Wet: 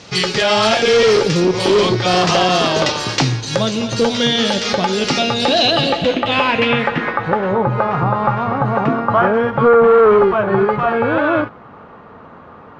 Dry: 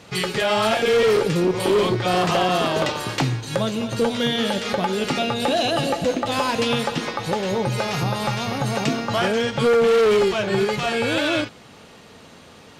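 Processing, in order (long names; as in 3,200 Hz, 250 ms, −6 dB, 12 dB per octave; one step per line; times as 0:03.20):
low-pass filter sweep 5,600 Hz → 1,200 Hz, 0:05.32–0:07.65
level +5 dB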